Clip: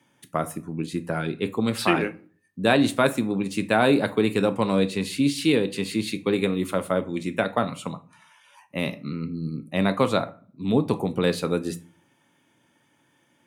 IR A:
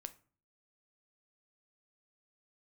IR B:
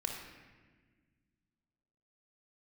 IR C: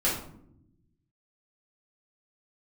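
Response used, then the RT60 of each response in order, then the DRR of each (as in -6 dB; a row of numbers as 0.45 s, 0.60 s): A; 0.45 s, 1.5 s, 0.75 s; 10.0 dB, 1.0 dB, -8.0 dB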